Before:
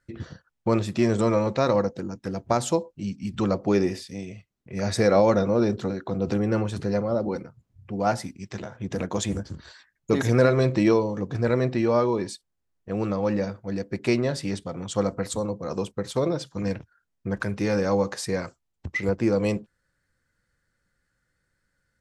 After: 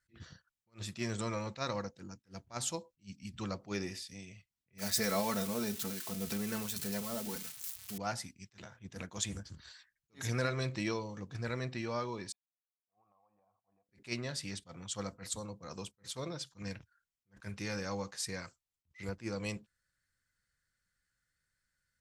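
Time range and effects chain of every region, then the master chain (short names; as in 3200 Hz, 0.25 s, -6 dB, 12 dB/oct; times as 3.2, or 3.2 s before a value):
4.78–7.98 switching spikes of -25 dBFS + comb 4.6 ms, depth 62%
12.32–13.89 vocal tract filter a + compressor 5:1, threshold -56 dBFS
whole clip: passive tone stack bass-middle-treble 5-5-5; attack slew limiter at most 320 dB/s; gain +2.5 dB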